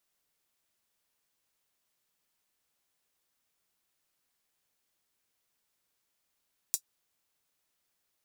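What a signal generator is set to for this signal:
closed synth hi-hat, high-pass 6,200 Hz, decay 0.08 s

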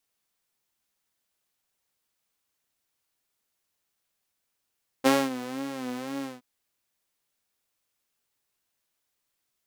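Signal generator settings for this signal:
subtractive patch with vibrato C4, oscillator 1 saw, detune 23 cents, sub −10 dB, filter highpass, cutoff 200 Hz, Q 1.4, filter envelope 1 octave, attack 24 ms, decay 0.23 s, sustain −18 dB, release 0.17 s, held 1.20 s, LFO 2 Hz, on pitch 91 cents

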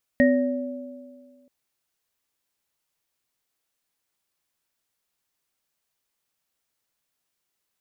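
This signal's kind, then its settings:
inharmonic partials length 1.28 s, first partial 254 Hz, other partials 570/1,870 Hz, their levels −2.5/−5 dB, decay 1.81 s, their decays 1.82/0.46 s, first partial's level −15 dB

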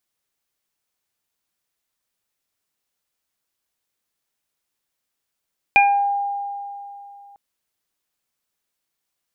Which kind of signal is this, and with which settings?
harmonic partials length 1.60 s, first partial 805 Hz, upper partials −16/3.5 dB, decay 2.98 s, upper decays 0.61/0.33 s, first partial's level −11.5 dB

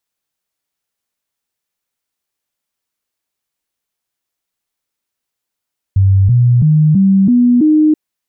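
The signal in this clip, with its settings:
stepped sweep 96.8 Hz up, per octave 3, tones 6, 0.33 s, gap 0.00 s −6 dBFS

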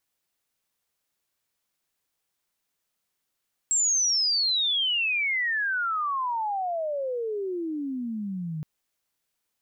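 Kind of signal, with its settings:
glide logarithmic 7,700 Hz → 150 Hz −20 dBFS → −29.5 dBFS 4.92 s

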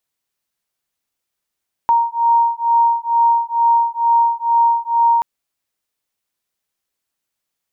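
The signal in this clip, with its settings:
two tones that beat 931 Hz, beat 2.2 Hz, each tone −15 dBFS 3.33 s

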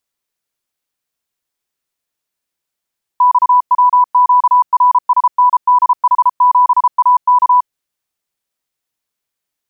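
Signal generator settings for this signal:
Morse code "XWQRSNDH7AK" 33 words per minute 991 Hz −5.5 dBFS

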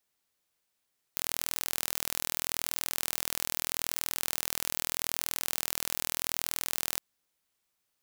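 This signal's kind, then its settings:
impulse train 40.8 per second, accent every 0, −4 dBFS 5.81 s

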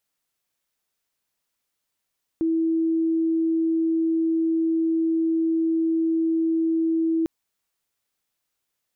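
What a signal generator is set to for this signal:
tone sine 326 Hz −19 dBFS 4.85 s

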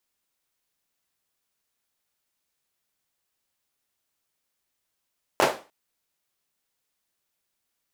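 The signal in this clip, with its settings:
synth clap length 0.30 s, bursts 3, apart 11 ms, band 590 Hz, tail 0.33 s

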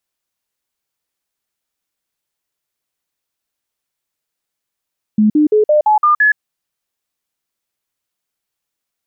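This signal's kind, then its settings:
stepped sweep 213 Hz up, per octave 2, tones 7, 0.12 s, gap 0.05 s −7.5 dBFS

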